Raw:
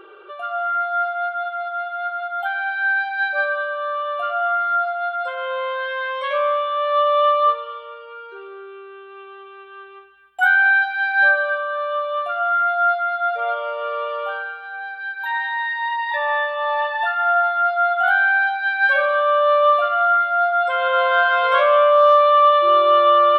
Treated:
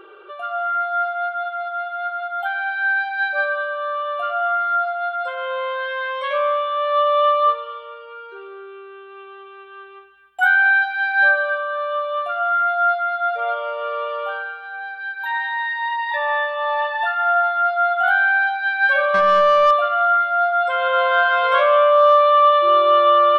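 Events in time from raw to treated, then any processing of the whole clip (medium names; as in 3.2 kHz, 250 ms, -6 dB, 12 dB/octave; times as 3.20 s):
19.14–19.71 s: overdrive pedal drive 16 dB, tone 1.5 kHz, clips at -6.5 dBFS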